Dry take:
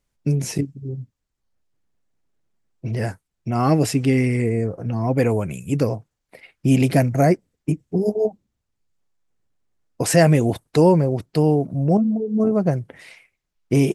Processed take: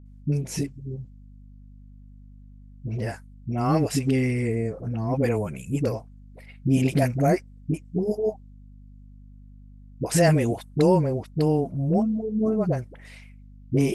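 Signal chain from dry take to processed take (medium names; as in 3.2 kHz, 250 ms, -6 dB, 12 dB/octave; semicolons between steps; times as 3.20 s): phase dispersion highs, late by 57 ms, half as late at 470 Hz; hum 50 Hz, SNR 21 dB; trim -4.5 dB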